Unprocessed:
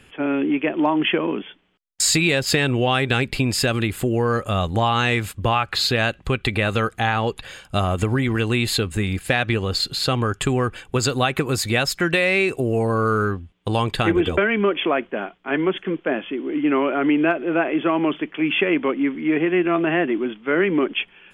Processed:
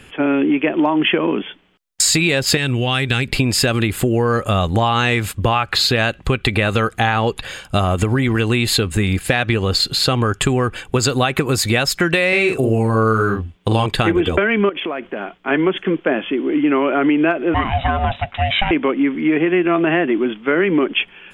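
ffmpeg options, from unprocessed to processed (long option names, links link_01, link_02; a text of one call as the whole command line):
ffmpeg -i in.wav -filter_complex "[0:a]asettb=1/sr,asplit=3[link_01][link_02][link_03];[link_01]atrim=end=2.574[link_04];[link_02]atrim=start=2.57:end=3.28,asetpts=PTS-STARTPTS,afade=type=in:duration=0.004:curve=qsin,afade=type=out:start_time=0.706:duration=0.004:curve=qsin,equalizer=frequency=610:width_type=o:width=2.9:gain=-9[link_05];[link_03]atrim=start=3.276[link_06];[link_04][link_05]acrossfade=duration=0.004:curve1=hsin:curve2=qsin[link_07];[link_07][link_06]acrossfade=duration=0.004:curve1=qsin:curve2=hsin,asettb=1/sr,asplit=3[link_08][link_09][link_10];[link_08]atrim=end=12.284[link_11];[link_09]atrim=start=12.28:end=13.86,asetpts=PTS-STARTPTS,afade=type=in:duration=0.004:curve=qsin,afade=type=out:start_time=1.576:duration=0.004:curve=qsin,asplit=2[link_12][link_13];[link_13]adelay=45,volume=-4.5dB[link_14];[link_12][link_14]amix=inputs=2:normalize=0,atrim=end_sample=69678[link_15];[link_10]atrim=start=13.856[link_16];[link_11][link_15]acrossfade=duration=0.004:curve1=hsin:curve2=qsin[link_17];[link_17][link_16]acrossfade=duration=0.004:curve1=qsin:curve2=hsin,asettb=1/sr,asplit=3[link_18][link_19][link_20];[link_18]atrim=end=14.694[link_21];[link_19]atrim=start=14.69:end=15.38,asetpts=PTS-STARTPTS,afade=type=in:duration=0.004:curve=qsin,afade=type=out:start_time=0.686:duration=0.004:curve=qsin,acompressor=threshold=-28dB:ratio=6:attack=3.2:release=140:knee=1:detection=peak[link_22];[link_20]atrim=start=15.376[link_23];[link_21][link_22]acrossfade=duration=0.004:curve1=hsin:curve2=qsin[link_24];[link_24][link_23]acrossfade=duration=0.004:curve1=qsin:curve2=hsin,asettb=1/sr,asplit=3[link_25][link_26][link_27];[link_25]atrim=end=17.544[link_28];[link_26]atrim=start=17.54:end=18.71,asetpts=PTS-STARTPTS,afade=type=in:duration=0.004:curve=qsin,afade=type=out:start_time=1.166:duration=0.004:curve=qsin,aeval=exprs='val(0)*sin(2*PI*400*n/s)':channel_layout=same[link_29];[link_27]atrim=start=18.706[link_30];[link_28][link_29]acrossfade=duration=0.004:curve1=hsin:curve2=qsin[link_31];[link_31][link_30]acrossfade=duration=0.004:curve1=qsin:curve2=hsin,acompressor=threshold=-21dB:ratio=3,volume=7.5dB" out.wav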